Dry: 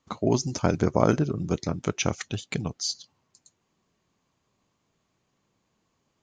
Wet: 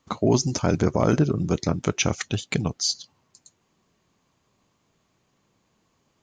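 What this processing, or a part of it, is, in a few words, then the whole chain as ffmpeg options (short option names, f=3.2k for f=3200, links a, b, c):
clipper into limiter: -af "asoftclip=type=hard:threshold=-6dB,alimiter=limit=-14dB:level=0:latency=1:release=13,volume=5dB"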